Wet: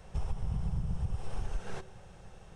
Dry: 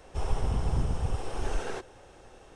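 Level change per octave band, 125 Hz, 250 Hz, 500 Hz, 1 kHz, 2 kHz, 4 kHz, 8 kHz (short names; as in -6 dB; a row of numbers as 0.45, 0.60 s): -3.5, -4.5, -11.0, -10.0, -9.0, -9.5, -9.5 dB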